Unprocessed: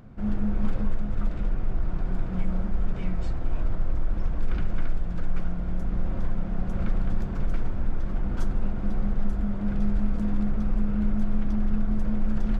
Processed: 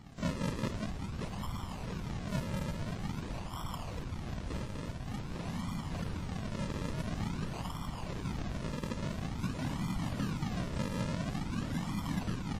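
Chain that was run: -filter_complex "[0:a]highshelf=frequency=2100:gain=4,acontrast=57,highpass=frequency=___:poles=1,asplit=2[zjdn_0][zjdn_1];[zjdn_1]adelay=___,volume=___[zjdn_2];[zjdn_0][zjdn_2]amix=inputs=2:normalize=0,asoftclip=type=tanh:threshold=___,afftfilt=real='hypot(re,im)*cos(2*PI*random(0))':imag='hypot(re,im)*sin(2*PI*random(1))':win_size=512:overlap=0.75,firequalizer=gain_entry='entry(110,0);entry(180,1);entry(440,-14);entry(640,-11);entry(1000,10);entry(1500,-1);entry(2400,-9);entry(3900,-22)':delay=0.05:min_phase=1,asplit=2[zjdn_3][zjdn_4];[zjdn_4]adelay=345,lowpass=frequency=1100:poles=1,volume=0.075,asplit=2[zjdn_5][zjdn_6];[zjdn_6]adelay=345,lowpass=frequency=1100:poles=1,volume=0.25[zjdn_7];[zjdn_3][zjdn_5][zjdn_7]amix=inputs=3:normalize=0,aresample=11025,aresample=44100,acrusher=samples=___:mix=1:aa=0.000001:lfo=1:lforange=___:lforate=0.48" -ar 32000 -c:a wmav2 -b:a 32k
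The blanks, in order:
180, 22, 0.224, 0.0891, 40, 40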